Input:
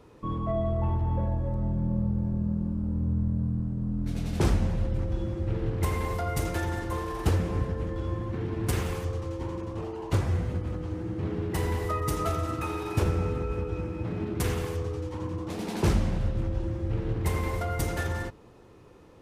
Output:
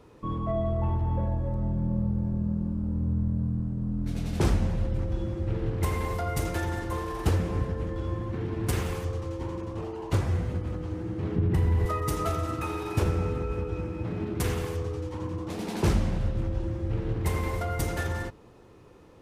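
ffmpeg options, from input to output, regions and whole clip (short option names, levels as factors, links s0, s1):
-filter_complex "[0:a]asettb=1/sr,asplit=3[s0][s1][s2];[s0]atrim=end=11.364[s3];[s1]atrim=start=11.36:end=11.86,asetpts=PTS-STARTPTS,afade=t=in:d=0.004:c=qsin,afade=t=out:st=0.496:d=0.004:c=qsin,bass=f=250:g=12,treble=f=4000:g=-8,acompressor=threshold=0.1:ratio=4:attack=3.2:release=140:knee=1:detection=peak[s4];[s2]atrim=start=11.856[s5];[s3][s4]acrossfade=d=0.004:c1=hsin:c2=qsin[s6];[s6][s5]acrossfade=d=0.004:c1=qsin:c2=hsin"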